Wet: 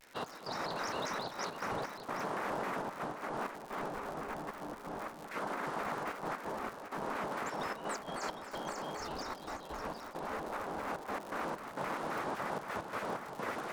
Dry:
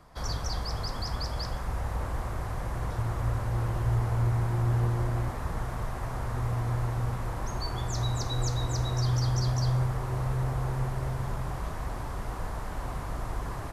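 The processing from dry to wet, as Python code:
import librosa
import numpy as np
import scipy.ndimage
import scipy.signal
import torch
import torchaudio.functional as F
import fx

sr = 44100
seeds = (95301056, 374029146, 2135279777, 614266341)

p1 = fx.spec_gate(x, sr, threshold_db=-15, keep='weak')
p2 = fx.lowpass(p1, sr, hz=2100.0, slope=6)
p3 = fx.low_shelf(p2, sr, hz=350.0, db=-5.0)
p4 = fx.over_compress(p3, sr, threshold_db=-43.0, ratio=-0.5)
p5 = fx.step_gate(p4, sr, bpm=130, pattern='xx..xxxxxxx.x.', floor_db=-12.0, edge_ms=4.5)
p6 = p5 + fx.echo_single(p5, sr, ms=763, db=-9.5, dry=0)
p7 = fx.dmg_crackle(p6, sr, seeds[0], per_s=150.0, level_db=-45.0)
p8 = fx.vibrato_shape(p7, sr, shape='square', rate_hz=3.8, depth_cents=250.0)
y = p8 * 10.0 ** (5.0 / 20.0)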